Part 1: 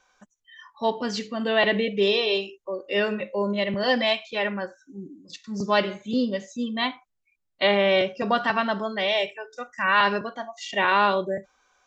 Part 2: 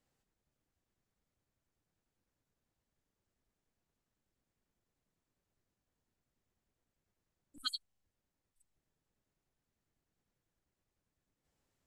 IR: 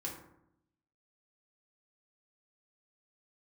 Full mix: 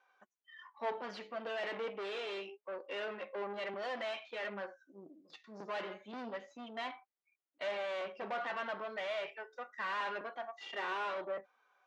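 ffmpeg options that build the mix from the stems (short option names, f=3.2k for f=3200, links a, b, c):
-filter_complex "[0:a]aeval=exprs='(tanh(35.5*val(0)+0.55)-tanh(0.55))/35.5':c=same,volume=1dB[a];[1:a]volume=-12dB[b];[a][b]amix=inputs=2:normalize=0,highpass=440,lowpass=2.4k,flanger=delay=2.5:depth=4:regen=70:speed=0.28:shape=sinusoidal"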